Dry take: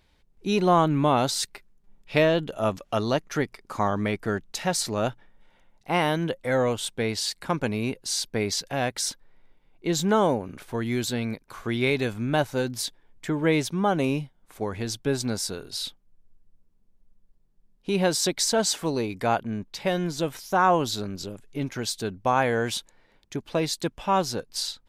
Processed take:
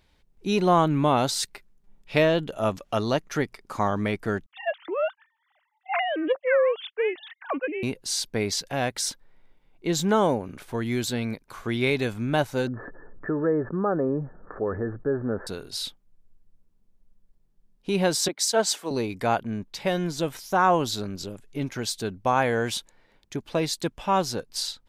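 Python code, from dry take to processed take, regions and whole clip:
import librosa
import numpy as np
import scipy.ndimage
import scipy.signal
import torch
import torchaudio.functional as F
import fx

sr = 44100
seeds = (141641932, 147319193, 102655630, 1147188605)

y = fx.chain(x, sr, fx.sine_speech(),
    fx.doppler_dist(depth_ms=0.11), at=(4.46, 7.83))
y = fx.chain(y, sr, fx.cheby_ripple(hz=1800.0, ripple_db=9),
    fx.env_flatten(amount_pct=50), at=(12.67, 15.47))
y = fx.chain(y, sr, fx.highpass(hz=290.0, slope=12),
    fx.band_widen(depth_pct=100), at=(18.28, 18.91))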